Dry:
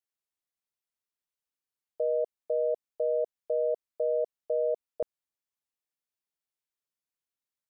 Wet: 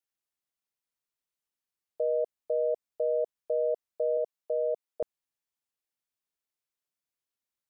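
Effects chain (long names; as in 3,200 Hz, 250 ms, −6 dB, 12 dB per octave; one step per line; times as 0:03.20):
0:04.17–0:05.02: high-pass filter 280 Hz 6 dB per octave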